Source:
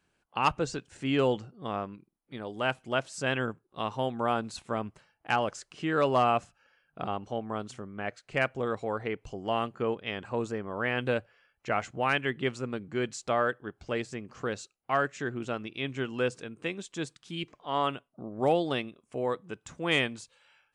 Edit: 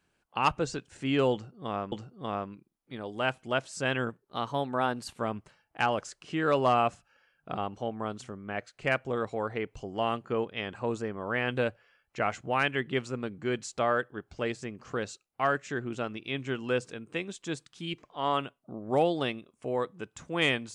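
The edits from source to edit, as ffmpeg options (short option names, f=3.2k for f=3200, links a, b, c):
-filter_complex "[0:a]asplit=4[a][b][c][d];[a]atrim=end=1.922[e];[b]atrim=start=1.328:end=3.504[f];[c]atrim=start=3.5:end=4.69,asetpts=PTS-STARTPTS,asetrate=47628,aresample=44100[g];[d]atrim=start=4.686[h];[e][f]acrossfade=d=0.004:c1=hsin:c2=hsin[i];[i][g]acrossfade=d=0.004:c1=hsin:c2=hsin[j];[j][h]acrossfade=d=0.004:c1=hsin:c2=hsin"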